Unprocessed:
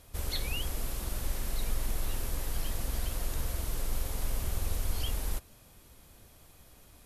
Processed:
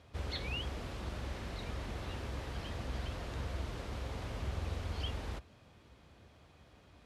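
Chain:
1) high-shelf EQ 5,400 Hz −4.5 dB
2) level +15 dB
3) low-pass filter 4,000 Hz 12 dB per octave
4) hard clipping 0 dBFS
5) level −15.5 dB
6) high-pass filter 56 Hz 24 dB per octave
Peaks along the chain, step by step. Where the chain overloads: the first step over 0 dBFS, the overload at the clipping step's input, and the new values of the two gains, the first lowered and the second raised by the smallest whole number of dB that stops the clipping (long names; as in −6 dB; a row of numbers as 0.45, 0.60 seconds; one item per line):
−19.0, −4.0, −4.5, −4.5, −20.0, −25.0 dBFS
no step passes full scale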